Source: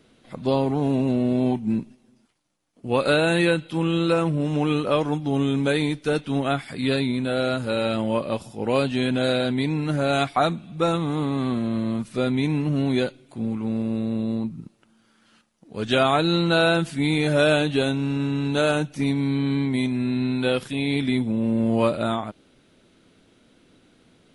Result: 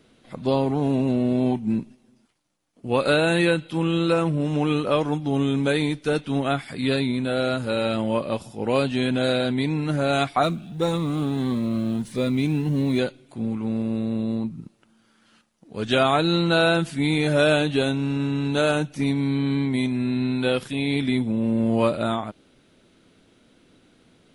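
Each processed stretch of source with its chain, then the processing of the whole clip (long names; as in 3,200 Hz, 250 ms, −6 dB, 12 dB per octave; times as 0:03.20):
0:10.43–0:12.99: mu-law and A-law mismatch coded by mu + phaser whose notches keep moving one way rising 1.6 Hz
whole clip: no processing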